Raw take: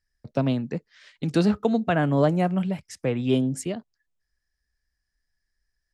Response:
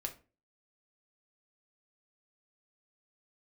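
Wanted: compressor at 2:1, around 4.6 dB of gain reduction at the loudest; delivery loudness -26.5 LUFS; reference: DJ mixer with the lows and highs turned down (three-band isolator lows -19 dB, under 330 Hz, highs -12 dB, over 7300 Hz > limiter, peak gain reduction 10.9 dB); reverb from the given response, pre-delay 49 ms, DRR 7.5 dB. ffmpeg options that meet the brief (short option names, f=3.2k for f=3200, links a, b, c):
-filter_complex "[0:a]acompressor=threshold=-24dB:ratio=2,asplit=2[a][b];[1:a]atrim=start_sample=2205,adelay=49[c];[b][c]afir=irnorm=-1:irlink=0,volume=-7dB[d];[a][d]amix=inputs=2:normalize=0,acrossover=split=330 7300:gain=0.112 1 0.251[e][f][g];[e][f][g]amix=inputs=3:normalize=0,volume=10.5dB,alimiter=limit=-16dB:level=0:latency=1"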